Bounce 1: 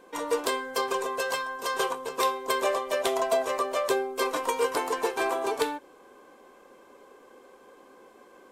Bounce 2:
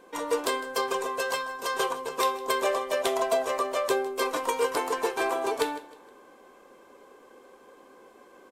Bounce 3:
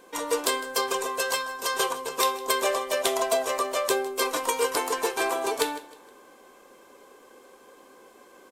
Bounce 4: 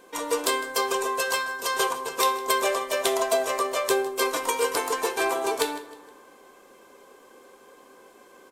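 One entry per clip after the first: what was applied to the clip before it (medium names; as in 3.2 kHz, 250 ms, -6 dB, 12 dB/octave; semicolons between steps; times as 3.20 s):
feedback delay 156 ms, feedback 36%, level -18 dB
treble shelf 3.2 kHz +8.5 dB
reverberation RT60 1.2 s, pre-delay 4 ms, DRR 11 dB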